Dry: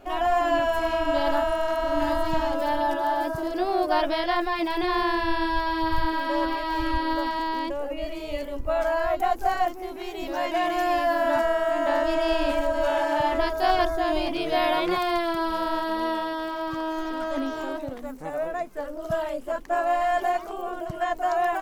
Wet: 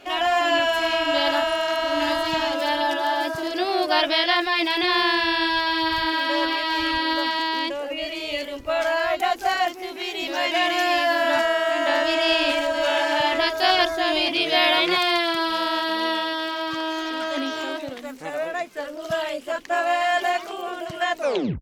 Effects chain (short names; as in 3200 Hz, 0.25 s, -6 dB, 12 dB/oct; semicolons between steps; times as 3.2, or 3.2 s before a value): tape stop at the end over 0.44 s; weighting filter D; gain +1.5 dB